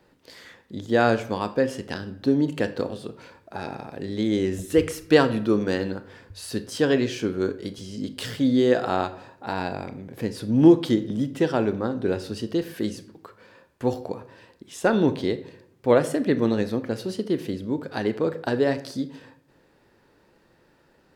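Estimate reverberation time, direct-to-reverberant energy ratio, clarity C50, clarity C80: 0.70 s, 11.5 dB, 14.5 dB, 17.5 dB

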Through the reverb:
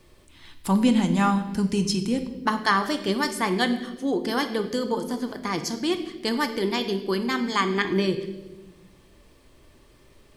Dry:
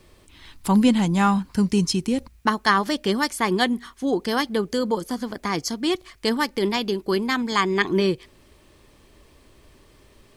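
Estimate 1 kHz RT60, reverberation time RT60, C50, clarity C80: 0.95 s, 1.1 s, 10.0 dB, 12.5 dB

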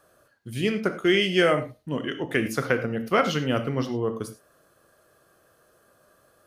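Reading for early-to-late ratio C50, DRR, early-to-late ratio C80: 11.0 dB, 7.5 dB, 15.0 dB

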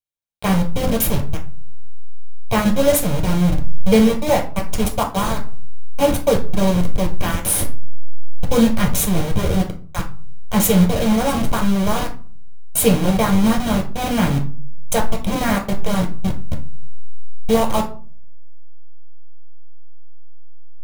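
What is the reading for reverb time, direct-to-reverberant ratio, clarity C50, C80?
0.45 s, 0.0 dB, 10.5 dB, 16.5 dB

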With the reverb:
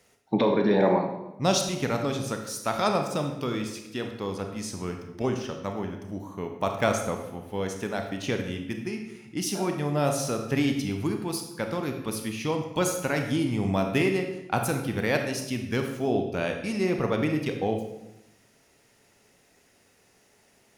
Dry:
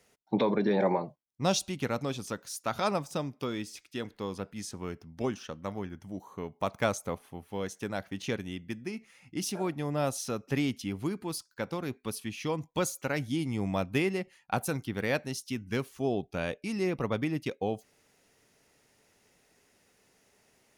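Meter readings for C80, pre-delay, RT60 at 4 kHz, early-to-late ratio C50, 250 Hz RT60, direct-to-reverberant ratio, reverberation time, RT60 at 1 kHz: 8.5 dB, 27 ms, 0.70 s, 6.0 dB, 1.1 s, 4.0 dB, 0.90 s, 0.85 s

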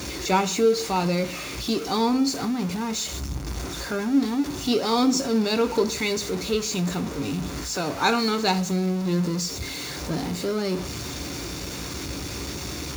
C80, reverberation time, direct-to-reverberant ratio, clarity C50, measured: 20.5 dB, 0.55 s, 8.5 dB, 17.0 dB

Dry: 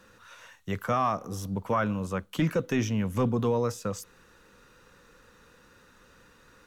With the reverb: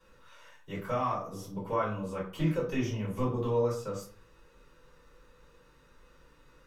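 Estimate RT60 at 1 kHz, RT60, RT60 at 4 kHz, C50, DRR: 0.40 s, 0.45 s, 0.30 s, 6.5 dB, -11.5 dB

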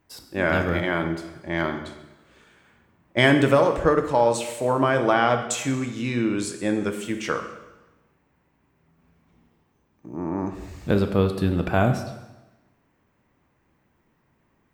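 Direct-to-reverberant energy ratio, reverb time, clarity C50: 6.5 dB, 1.1 s, 9.0 dB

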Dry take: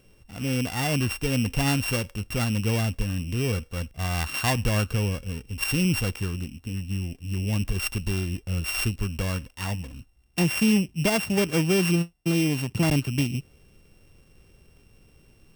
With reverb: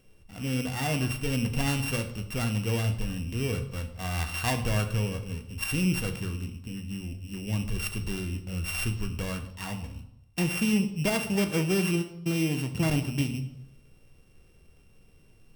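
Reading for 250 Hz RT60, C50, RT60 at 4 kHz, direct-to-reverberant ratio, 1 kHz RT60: 0.80 s, 11.0 dB, 0.65 s, 6.0 dB, 0.80 s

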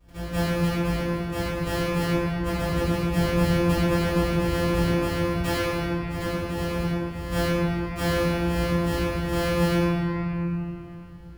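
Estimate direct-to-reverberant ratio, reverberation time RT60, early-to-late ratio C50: -18.0 dB, 3.0 s, -6.0 dB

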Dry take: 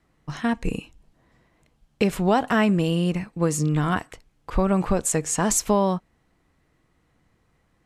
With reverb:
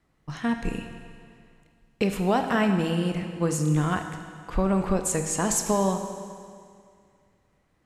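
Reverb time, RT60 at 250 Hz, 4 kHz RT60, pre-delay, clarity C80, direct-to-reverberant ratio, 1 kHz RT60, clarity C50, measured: 2.2 s, 2.2 s, 2.1 s, 18 ms, 8.0 dB, 5.5 dB, 2.2 s, 7.0 dB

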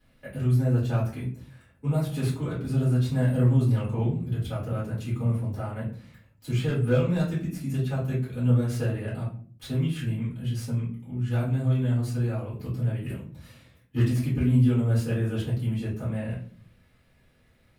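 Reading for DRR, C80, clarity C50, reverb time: -10.0 dB, 11.5 dB, 6.5 dB, 0.45 s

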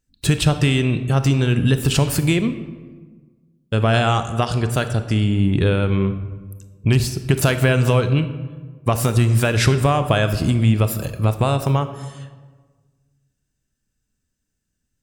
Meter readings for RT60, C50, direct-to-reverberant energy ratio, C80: 1.5 s, 11.0 dB, 9.5 dB, 13.0 dB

